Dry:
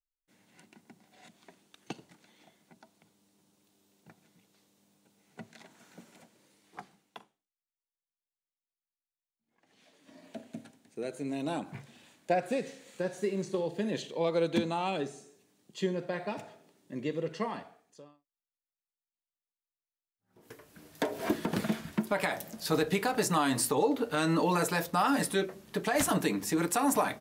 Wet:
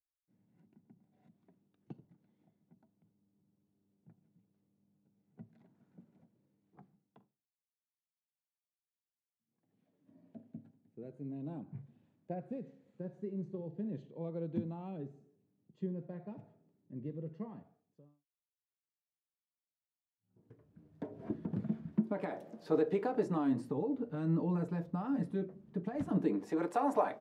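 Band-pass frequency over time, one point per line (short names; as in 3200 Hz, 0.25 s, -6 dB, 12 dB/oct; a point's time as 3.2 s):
band-pass, Q 1.2
21.68 s 120 Hz
22.43 s 410 Hz
23.02 s 410 Hz
23.85 s 160 Hz
26.05 s 160 Hz
26.51 s 570 Hz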